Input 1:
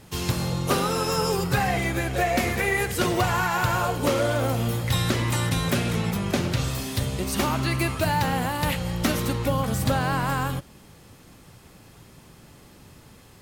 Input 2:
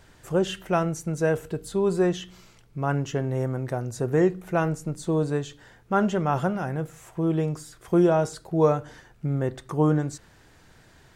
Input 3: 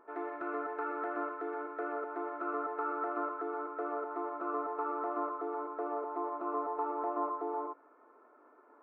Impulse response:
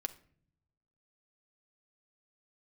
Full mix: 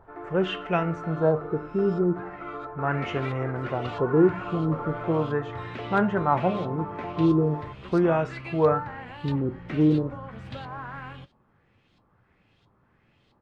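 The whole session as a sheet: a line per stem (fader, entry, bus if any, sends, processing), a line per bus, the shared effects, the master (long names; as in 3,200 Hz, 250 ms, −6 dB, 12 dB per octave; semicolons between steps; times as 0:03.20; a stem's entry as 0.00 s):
0:02.72 −21 dB → 0:02.96 −11.5 dB, 0.65 s, no send, auto-filter low-pass saw up 1.5 Hz 960–3,900 Hz; flanger 0.38 Hz, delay 7.6 ms, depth 3 ms, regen −59%
+2.0 dB, 0.00 s, no send, flanger 0.33 Hz, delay 9.7 ms, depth 3.6 ms, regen +79%; auto-filter low-pass sine 0.39 Hz 270–2,700 Hz
−1.0 dB, 0.00 s, no send, no processing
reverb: not used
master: no processing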